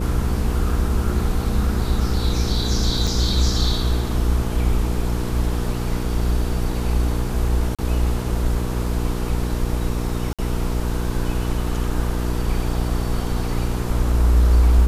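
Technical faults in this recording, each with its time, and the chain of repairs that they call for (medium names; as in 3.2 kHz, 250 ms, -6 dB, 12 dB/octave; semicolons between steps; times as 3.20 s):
hum 60 Hz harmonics 8 -24 dBFS
3.07 s: dropout 4.2 ms
7.75–7.79 s: dropout 36 ms
10.33–10.39 s: dropout 56 ms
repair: de-hum 60 Hz, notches 8; interpolate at 3.07 s, 4.2 ms; interpolate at 7.75 s, 36 ms; interpolate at 10.33 s, 56 ms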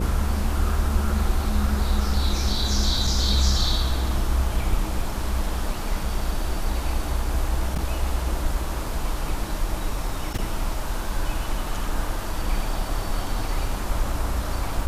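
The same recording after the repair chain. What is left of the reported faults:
nothing left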